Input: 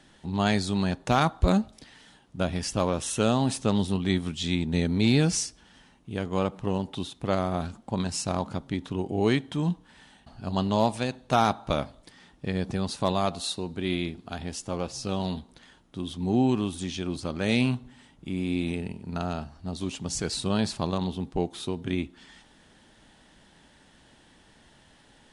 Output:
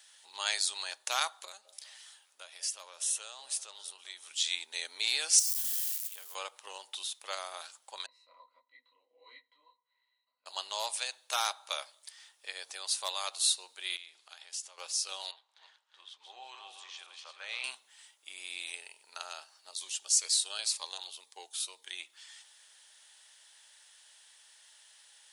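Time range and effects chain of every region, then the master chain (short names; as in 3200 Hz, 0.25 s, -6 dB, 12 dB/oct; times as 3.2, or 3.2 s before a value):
1.45–4.31 compressor 2:1, threshold -41 dBFS + delay with a stepping band-pass 0.194 s, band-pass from 500 Hz, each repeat 0.7 oct, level -10.5 dB
5.39–6.35 switching spikes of -33.5 dBFS + compressor 12:1, threshold -34 dBFS
8.06–10.46 resonant high shelf 4400 Hz -11 dB, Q 1.5 + octave resonator B, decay 0.11 s + detuned doubles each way 55 cents
13.96–14.78 LPF 9100 Hz + bell 73 Hz -12 dB 3 oct + compressor 5:1, threshold -40 dBFS
15.31–17.64 regenerating reverse delay 0.176 s, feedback 44%, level -4.5 dB + HPF 670 Hz + tape spacing loss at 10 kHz 28 dB
19.71–22 bell 130 Hz -11 dB 1.4 oct + cascading phaser falling 2 Hz
whole clip: HPF 530 Hz 24 dB/oct; differentiator; notch 700 Hz, Q 12; gain +7.5 dB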